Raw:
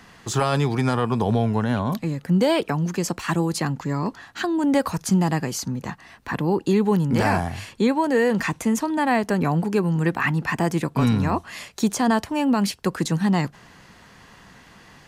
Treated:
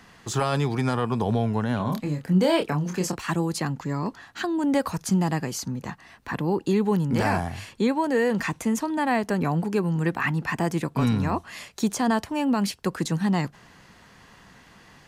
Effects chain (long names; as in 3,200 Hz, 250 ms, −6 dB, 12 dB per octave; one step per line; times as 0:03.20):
0:01.77–0:03.16: double-tracking delay 27 ms −5.5 dB
level −3 dB